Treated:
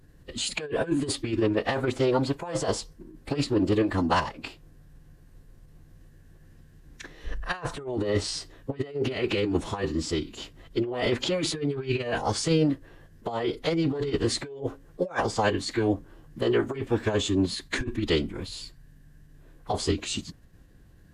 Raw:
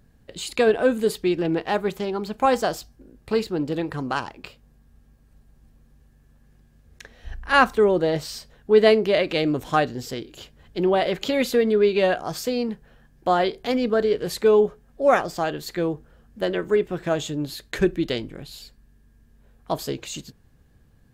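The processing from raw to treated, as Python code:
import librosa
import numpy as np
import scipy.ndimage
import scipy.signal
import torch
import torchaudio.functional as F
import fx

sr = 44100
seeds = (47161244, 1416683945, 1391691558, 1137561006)

y = fx.over_compress(x, sr, threshold_db=-24.0, ratio=-0.5)
y = fx.pitch_keep_formants(y, sr, semitones=-7.5)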